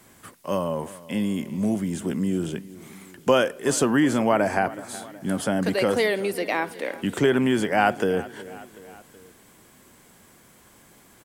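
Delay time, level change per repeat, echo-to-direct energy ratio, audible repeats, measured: 0.372 s, -5.0 dB, -17.0 dB, 3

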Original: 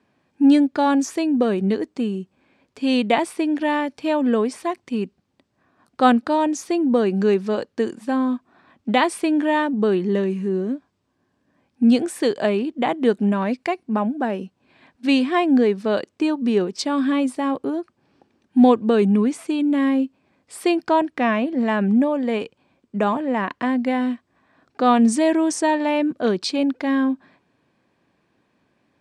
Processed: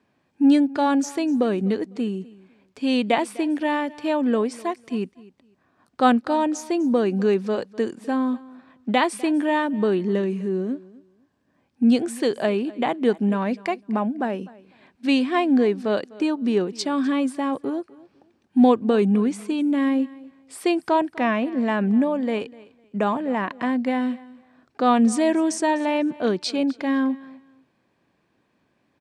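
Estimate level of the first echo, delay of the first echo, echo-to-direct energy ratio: -21.0 dB, 0.251 s, -21.0 dB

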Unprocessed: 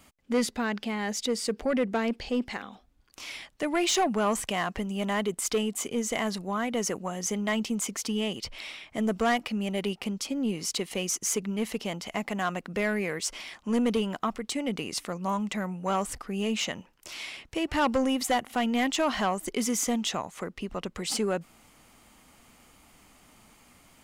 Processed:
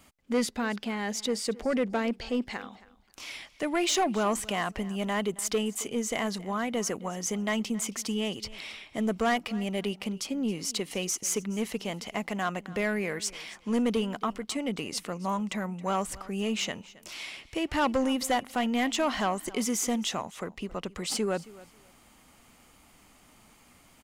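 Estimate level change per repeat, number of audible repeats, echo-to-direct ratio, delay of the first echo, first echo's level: -14.5 dB, 2, -20.0 dB, 0.271 s, -20.0 dB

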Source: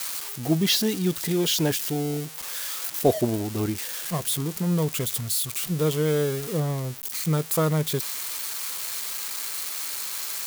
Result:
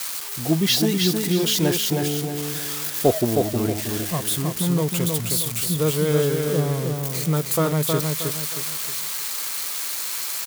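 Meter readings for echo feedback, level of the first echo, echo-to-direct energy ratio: 35%, -4.0 dB, -3.5 dB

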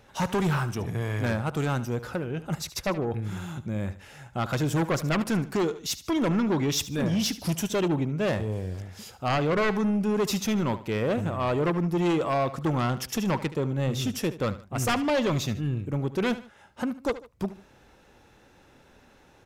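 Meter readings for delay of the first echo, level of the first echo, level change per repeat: 74 ms, -15.0 dB, -8.5 dB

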